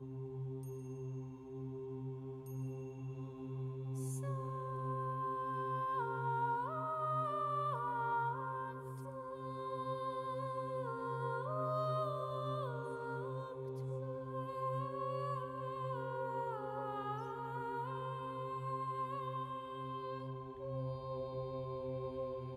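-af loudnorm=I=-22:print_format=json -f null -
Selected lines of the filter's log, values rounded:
"input_i" : "-41.4",
"input_tp" : "-26.8",
"input_lra" : "5.3",
"input_thresh" : "-51.4",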